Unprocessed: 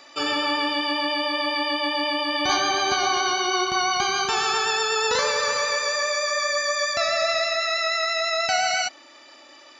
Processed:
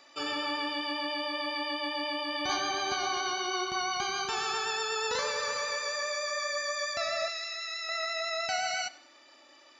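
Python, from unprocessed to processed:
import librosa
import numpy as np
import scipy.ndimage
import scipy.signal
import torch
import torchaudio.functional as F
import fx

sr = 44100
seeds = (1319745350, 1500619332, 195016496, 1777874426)

y = fx.tone_stack(x, sr, knobs='10-0-10', at=(7.28, 7.89))
y = fx.echo_feedback(y, sr, ms=96, feedback_pct=35, wet_db=-20.0)
y = F.gain(torch.from_numpy(y), -9.0).numpy()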